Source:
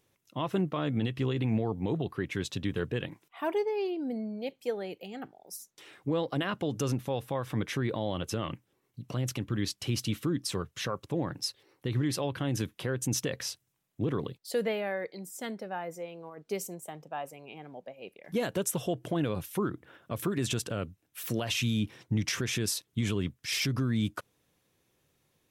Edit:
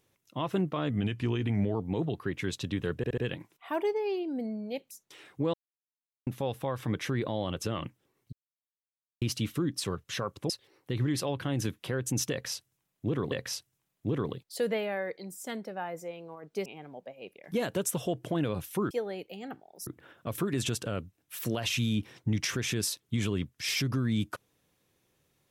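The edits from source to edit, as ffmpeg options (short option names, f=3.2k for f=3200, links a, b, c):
-filter_complex "[0:a]asplit=16[a][b][c][d][e][f][g][h][i][j][k][l][m][n][o][p];[a]atrim=end=0.904[q];[b]atrim=start=0.9:end=1.67,asetpts=PTS-STARTPTS,asetrate=40131,aresample=44100,atrim=end_sample=37315,asetpts=PTS-STARTPTS[r];[c]atrim=start=1.666:end=2.962[s];[d]atrim=start=2.888:end=2.962[t];[e]atrim=start=2.888:end=2.962[u];[f]atrim=start=2.888:end=4.622[v];[g]atrim=start=5.578:end=6.21,asetpts=PTS-STARTPTS,afade=t=out:st=0.628:d=0.004:c=hsin[w];[h]atrim=start=6.21:end=6.94,asetpts=PTS-STARTPTS,volume=0[x];[i]atrim=start=6.94:end=9,asetpts=PTS-STARTPTS,afade=t=in:d=0.004:c=hsin,afade=t=out:st=2.056:d=0.004:c=hsin[y];[j]atrim=start=9:end=9.89,asetpts=PTS-STARTPTS,volume=0[z];[k]atrim=start=9.89:end=11.172,asetpts=PTS-STARTPTS,afade=t=in:d=0.004:c=hsin[aa];[l]atrim=start=11.448:end=14.272[ab];[m]atrim=start=13.258:end=16.602[ac];[n]atrim=start=17.458:end=19.712[ad];[o]atrim=start=4.618:end=5.582[ae];[p]atrim=start=19.708[af];[q][r]acrossfade=d=0.004:c1=hsin:c2=hsin[ag];[ag][s]acrossfade=d=0.004:c1=hsin:c2=hsin[ah];[ah][t]acrossfade=d=0.004:c1=hsin:c2=hsin[ai];[ai][u]acrossfade=d=0.004:c1=hsin:c2=hsin[aj];[aj][v]acrossfade=d=0.004:c1=hsin:c2=hsin[ak];[w][x][y][z][aa]concat=n=5:v=0:a=1[al];[ak][al]acrossfade=d=0.004:c1=hsin:c2=hsin[am];[am][ab]acrossfade=d=0.004:c1=hsin:c2=hsin[an];[an][ac]acrossfade=d=0.004:c1=hsin:c2=hsin[ao];[ao][ad]acrossfade=d=0.004:c1=hsin:c2=hsin[ap];[ap][ae]acrossfade=d=0.004:c1=hsin:c2=hsin[aq];[aq][af]acrossfade=d=0.004:c1=hsin:c2=hsin"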